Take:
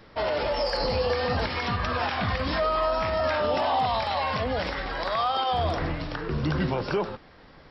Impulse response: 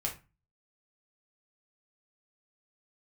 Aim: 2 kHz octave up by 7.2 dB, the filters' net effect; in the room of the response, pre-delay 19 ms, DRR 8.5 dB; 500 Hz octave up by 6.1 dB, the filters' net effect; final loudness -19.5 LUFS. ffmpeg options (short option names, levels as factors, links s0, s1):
-filter_complex "[0:a]equalizer=f=500:t=o:g=7,equalizer=f=2000:t=o:g=8.5,asplit=2[s0][s1];[1:a]atrim=start_sample=2205,adelay=19[s2];[s1][s2]afir=irnorm=-1:irlink=0,volume=0.266[s3];[s0][s3]amix=inputs=2:normalize=0,volume=1.26"